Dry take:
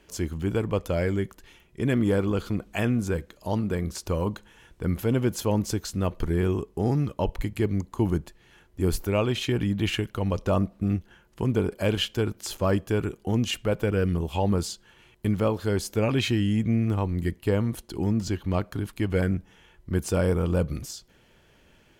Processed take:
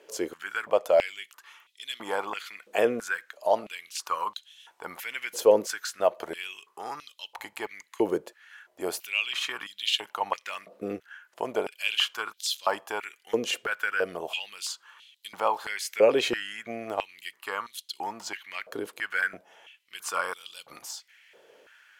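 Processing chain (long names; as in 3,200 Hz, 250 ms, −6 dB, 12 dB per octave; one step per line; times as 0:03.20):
tape wow and flutter 21 cents
high-pass on a step sequencer 3 Hz 480–3,600 Hz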